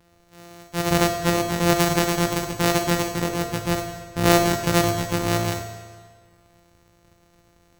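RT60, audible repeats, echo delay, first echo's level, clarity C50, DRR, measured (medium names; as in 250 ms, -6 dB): 1.6 s, no echo, no echo, no echo, 4.5 dB, 2.0 dB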